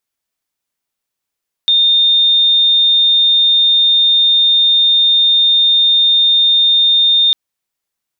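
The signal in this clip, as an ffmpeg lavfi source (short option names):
-f lavfi -i "sine=f=3640:d=5.65:r=44100,volume=10.56dB"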